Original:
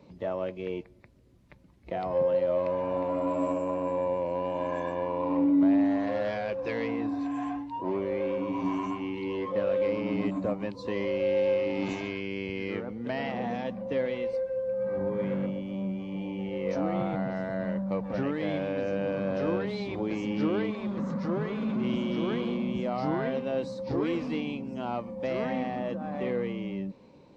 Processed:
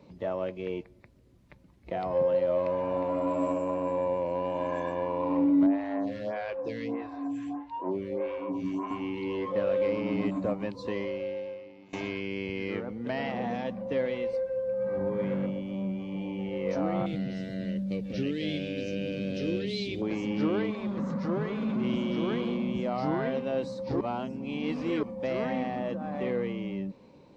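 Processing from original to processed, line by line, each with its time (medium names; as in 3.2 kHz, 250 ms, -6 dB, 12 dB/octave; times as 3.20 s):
5.66–8.91 s: lamp-driven phase shifter 1.6 Hz
10.86–11.93 s: fade out quadratic, to -24 dB
17.06–20.02 s: FFT filter 420 Hz 0 dB, 1 kHz -25 dB, 2.8 kHz +8 dB
24.01–25.03 s: reverse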